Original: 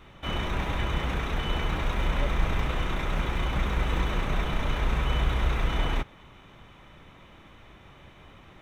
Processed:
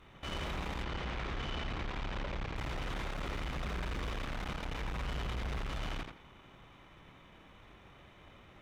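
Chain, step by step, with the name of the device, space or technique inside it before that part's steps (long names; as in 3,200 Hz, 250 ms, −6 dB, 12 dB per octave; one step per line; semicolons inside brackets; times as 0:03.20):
rockabilly slapback (tube saturation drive 34 dB, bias 0.8; tape delay 86 ms, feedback 24%, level −3.5 dB, low-pass 5,600 Hz)
0:00.83–0:02.56: low-pass filter 5,600 Hz 12 dB per octave
level −2 dB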